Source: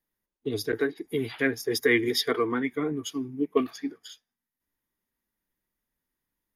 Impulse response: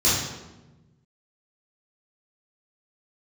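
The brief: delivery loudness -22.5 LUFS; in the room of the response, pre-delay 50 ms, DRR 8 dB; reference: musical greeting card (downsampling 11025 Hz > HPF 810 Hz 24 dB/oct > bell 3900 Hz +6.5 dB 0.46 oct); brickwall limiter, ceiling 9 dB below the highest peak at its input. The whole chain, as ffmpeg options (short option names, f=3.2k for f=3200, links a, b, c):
-filter_complex "[0:a]alimiter=limit=-19.5dB:level=0:latency=1,asplit=2[a][b];[1:a]atrim=start_sample=2205,adelay=50[c];[b][c]afir=irnorm=-1:irlink=0,volume=-24.5dB[d];[a][d]amix=inputs=2:normalize=0,aresample=11025,aresample=44100,highpass=f=810:w=0.5412,highpass=f=810:w=1.3066,equalizer=f=3.9k:t=o:w=0.46:g=6.5,volume=12.5dB"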